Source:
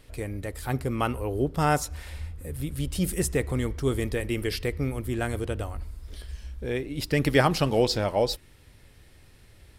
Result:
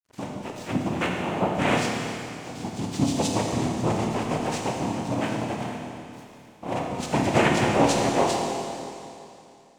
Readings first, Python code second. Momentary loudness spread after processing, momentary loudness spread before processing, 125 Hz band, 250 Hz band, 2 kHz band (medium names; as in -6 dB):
16 LU, 15 LU, -1.0 dB, +4.0 dB, +2.5 dB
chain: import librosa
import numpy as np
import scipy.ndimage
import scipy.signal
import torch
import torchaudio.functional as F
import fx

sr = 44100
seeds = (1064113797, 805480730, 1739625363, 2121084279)

y = fx.freq_compress(x, sr, knee_hz=1700.0, ratio=1.5)
y = fx.noise_vocoder(y, sr, seeds[0], bands=4)
y = np.sign(y) * np.maximum(np.abs(y) - 10.0 ** (-51.0 / 20.0), 0.0)
y = fx.rev_schroeder(y, sr, rt60_s=2.7, comb_ms=25, drr_db=0.0)